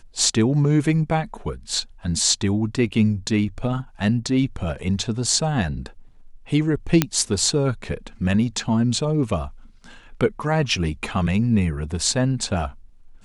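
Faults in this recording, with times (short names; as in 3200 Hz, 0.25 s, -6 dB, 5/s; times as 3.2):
7.02 pop -1 dBFS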